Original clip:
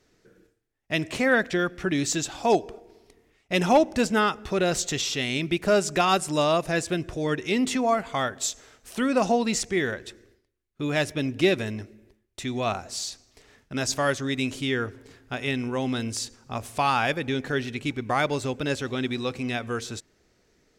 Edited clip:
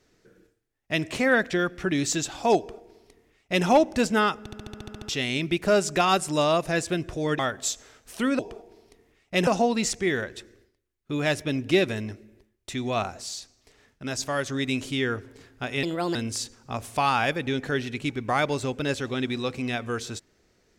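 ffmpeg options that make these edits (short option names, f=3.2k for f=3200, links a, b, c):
-filter_complex "[0:a]asplit=18[a][b][c][d][e][f][g][h][i][j][k][l][m][n][o][p][q][r];[a]atrim=end=4.462[s];[b]atrim=start=4.388:end=4.462[t];[c]atrim=start=4.388:end=4.462[u];[d]atrim=start=4.388:end=4.462[v];[e]atrim=start=4.388:end=4.462[w];[f]atrim=start=4.388:end=4.462[x];[g]atrim=start=4.388:end=4.462[y];[h]atrim=start=4.388:end=4.462[z];[i]atrim=start=4.388:end=4.462[aa];[j]atrim=start=4.388:end=4.462[ab];[k]atrim=start=5.088:end=7.392[ac];[l]atrim=start=8.168:end=9.172[ad];[m]atrim=start=2.568:end=3.652[ae];[n]atrim=start=9.168:end=12.922[af];[o]atrim=start=12.918:end=14.162,asetpts=PTS-STARTPTS,volume=-3.5dB[ag];[p]atrim=start=14.158:end=15.534[ah];[q]atrim=start=15.53:end=15.96,asetpts=PTS-STARTPTS,asetrate=59094,aresample=44100,atrim=end_sample=14151,asetpts=PTS-STARTPTS[ai];[r]atrim=start=15.956[aj];[s][t]acrossfade=d=0.004:c1=hsin:c2=hsin[ak];[ak][u]acrossfade=d=0.004:c1=hsin:c2=hsin[al];[al][v]acrossfade=d=0.004:c1=hsin:c2=hsin[am];[am][w]acrossfade=d=0.004:c1=hsin:c2=hsin[an];[an][x]acrossfade=d=0.004:c1=hsin:c2=hsin[ao];[ao][y]acrossfade=d=0.004:c1=hsin:c2=hsin[ap];[ap][z]acrossfade=d=0.004:c1=hsin:c2=hsin[aq];[aq][aa]acrossfade=d=0.004:c1=hsin:c2=hsin[ar];[ar][ab]acrossfade=d=0.004:c1=hsin:c2=hsin[as];[as][ac]acrossfade=d=0.004:c1=hsin:c2=hsin[at];[at][ad]acrossfade=d=0.004:c1=hsin:c2=hsin[au];[au][ae]acrossfade=d=0.004:c1=hsin:c2=hsin[av];[av][af]acrossfade=d=0.004:c1=hsin:c2=hsin[aw];[aw][ag]acrossfade=d=0.004:c1=hsin:c2=hsin[ax];[ax][ah]acrossfade=d=0.004:c1=hsin:c2=hsin[ay];[ay][ai]acrossfade=d=0.004:c1=hsin:c2=hsin[az];[az][aj]acrossfade=d=0.004:c1=hsin:c2=hsin"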